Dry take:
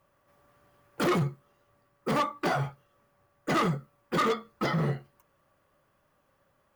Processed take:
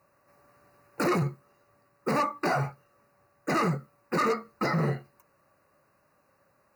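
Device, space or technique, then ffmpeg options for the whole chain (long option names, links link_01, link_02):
PA system with an anti-feedback notch: -af "highpass=frequency=110:poles=1,asuperstop=centerf=3300:order=12:qfactor=3.6,alimiter=limit=-22dB:level=0:latency=1:release=22,volume=3dB"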